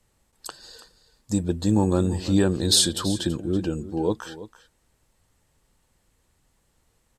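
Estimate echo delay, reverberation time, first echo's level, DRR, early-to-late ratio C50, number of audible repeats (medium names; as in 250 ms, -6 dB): 330 ms, no reverb, -15.5 dB, no reverb, no reverb, 1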